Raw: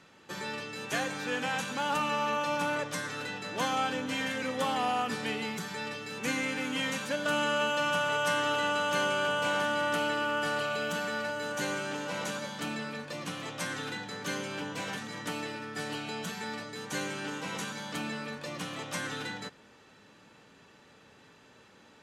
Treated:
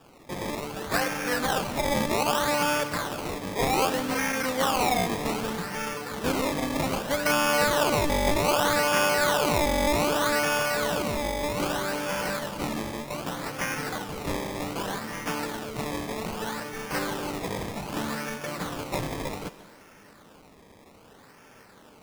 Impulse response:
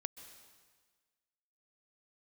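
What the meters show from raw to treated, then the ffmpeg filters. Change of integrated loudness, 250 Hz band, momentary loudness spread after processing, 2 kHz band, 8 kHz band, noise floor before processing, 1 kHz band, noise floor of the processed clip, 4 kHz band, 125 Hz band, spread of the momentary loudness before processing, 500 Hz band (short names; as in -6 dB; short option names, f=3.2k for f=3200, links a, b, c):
+5.0 dB, +6.0 dB, 11 LU, +2.5 dB, +7.5 dB, -58 dBFS, +5.0 dB, -53 dBFS, +3.5 dB, +8.0 dB, 9 LU, +6.5 dB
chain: -filter_complex "[0:a]acrusher=samples=21:mix=1:aa=0.000001:lfo=1:lforange=21:lforate=0.64,asplit=2[a][b];[1:a]atrim=start_sample=2205,lowshelf=f=350:g=-6.5[c];[b][c]afir=irnorm=-1:irlink=0,volume=3.5dB[d];[a][d]amix=inputs=2:normalize=0"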